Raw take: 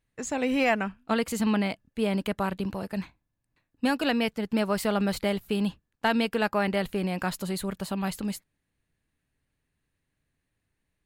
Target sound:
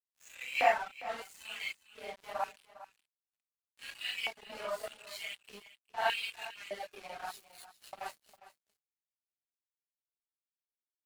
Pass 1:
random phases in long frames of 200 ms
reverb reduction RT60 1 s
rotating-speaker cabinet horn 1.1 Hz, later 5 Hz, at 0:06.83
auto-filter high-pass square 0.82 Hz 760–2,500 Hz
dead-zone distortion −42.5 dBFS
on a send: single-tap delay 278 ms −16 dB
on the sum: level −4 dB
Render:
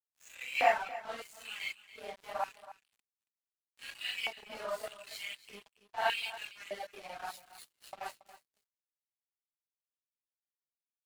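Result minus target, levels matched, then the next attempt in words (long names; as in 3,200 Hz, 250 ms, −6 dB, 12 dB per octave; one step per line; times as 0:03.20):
echo 127 ms early
random phases in long frames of 200 ms
reverb reduction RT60 1 s
rotating-speaker cabinet horn 1.1 Hz, later 5 Hz, at 0:06.83
auto-filter high-pass square 0.82 Hz 760–2,500 Hz
dead-zone distortion −42.5 dBFS
on a send: single-tap delay 405 ms −16 dB
on the sum: level −4 dB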